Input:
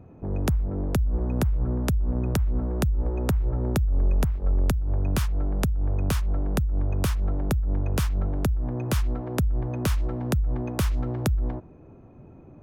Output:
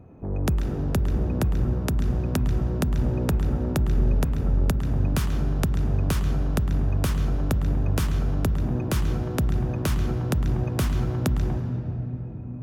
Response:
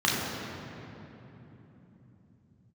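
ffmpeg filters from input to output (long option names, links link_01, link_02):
-filter_complex "[0:a]asplit=2[link_01][link_02];[1:a]atrim=start_sample=2205,adelay=106[link_03];[link_02][link_03]afir=irnorm=-1:irlink=0,volume=-21dB[link_04];[link_01][link_04]amix=inputs=2:normalize=0"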